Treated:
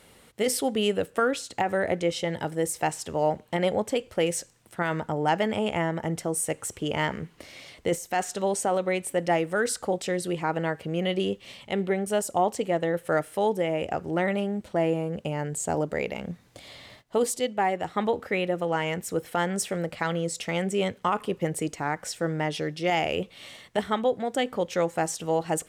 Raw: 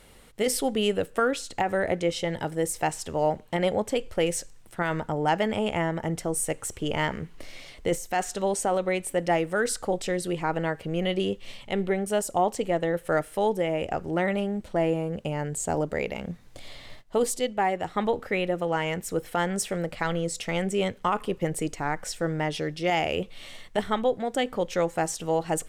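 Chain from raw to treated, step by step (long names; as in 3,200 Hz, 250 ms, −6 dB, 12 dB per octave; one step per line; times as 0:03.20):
high-pass filter 81 Hz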